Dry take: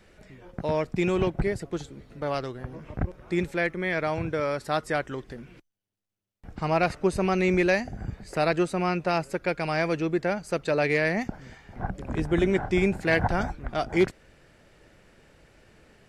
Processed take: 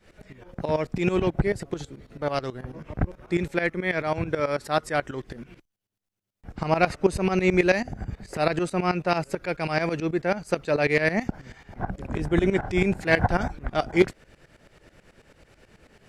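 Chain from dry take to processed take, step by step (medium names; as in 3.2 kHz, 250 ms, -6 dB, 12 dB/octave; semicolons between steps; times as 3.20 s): tremolo saw up 9.2 Hz, depth 85%; trim +5.5 dB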